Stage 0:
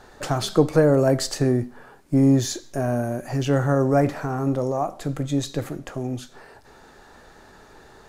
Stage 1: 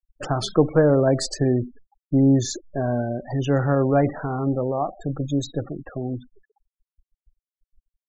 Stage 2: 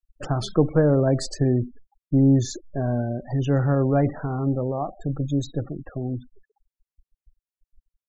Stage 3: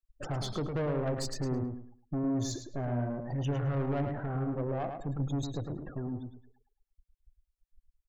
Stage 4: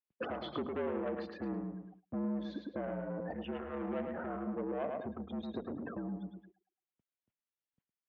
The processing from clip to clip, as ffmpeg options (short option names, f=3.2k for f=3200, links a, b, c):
-af "afftfilt=real='re*gte(hypot(re,im),0.0355)':imag='im*gte(hypot(re,im),0.0355)':win_size=1024:overlap=0.75"
-af "lowshelf=f=240:g=8,volume=-4.5dB"
-filter_complex "[0:a]alimiter=limit=-13dB:level=0:latency=1:release=100,asoftclip=type=tanh:threshold=-24dB,asplit=2[a][b];[b]adelay=107,lowpass=f=3.9k:p=1,volume=-5.5dB,asplit=2[c][d];[d]adelay=107,lowpass=f=3.9k:p=1,volume=0.27,asplit=2[e][f];[f]adelay=107,lowpass=f=3.9k:p=1,volume=0.27,asplit=2[g][h];[h]adelay=107,lowpass=f=3.9k:p=1,volume=0.27[i];[a][c][e][g][i]amix=inputs=5:normalize=0,volume=-5dB"
-af "agate=range=-12dB:threshold=-57dB:ratio=16:detection=peak,acompressor=threshold=-40dB:ratio=6,highpass=f=250:t=q:w=0.5412,highpass=f=250:t=q:w=1.307,lowpass=f=3.3k:t=q:w=0.5176,lowpass=f=3.3k:t=q:w=0.7071,lowpass=f=3.3k:t=q:w=1.932,afreqshift=-61,volume=7.5dB"